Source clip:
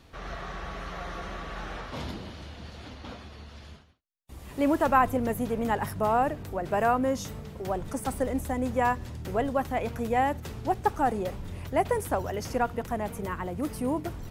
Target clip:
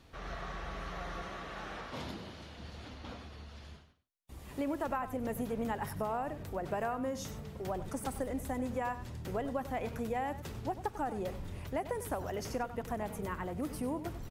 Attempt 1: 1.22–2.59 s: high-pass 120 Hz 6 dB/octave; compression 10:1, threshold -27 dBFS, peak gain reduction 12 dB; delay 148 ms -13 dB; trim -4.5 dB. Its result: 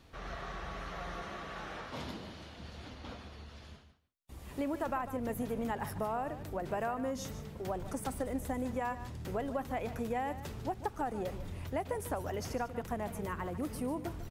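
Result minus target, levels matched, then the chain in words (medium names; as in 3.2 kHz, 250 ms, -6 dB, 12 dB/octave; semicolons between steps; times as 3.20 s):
echo 52 ms late
1.22–2.59 s: high-pass 120 Hz 6 dB/octave; compression 10:1, threshold -27 dBFS, peak gain reduction 12 dB; delay 96 ms -13 dB; trim -4.5 dB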